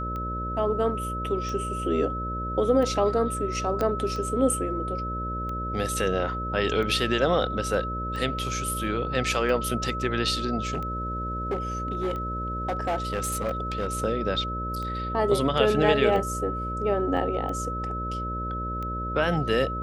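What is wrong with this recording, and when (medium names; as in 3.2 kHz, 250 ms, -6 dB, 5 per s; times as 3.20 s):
buzz 60 Hz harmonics 10 -33 dBFS
tick 45 rpm -23 dBFS
whine 1.3 kHz -31 dBFS
3.81 s: pop -14 dBFS
10.63–13.87 s: clipped -22.5 dBFS
17.17 s: dropout 4.8 ms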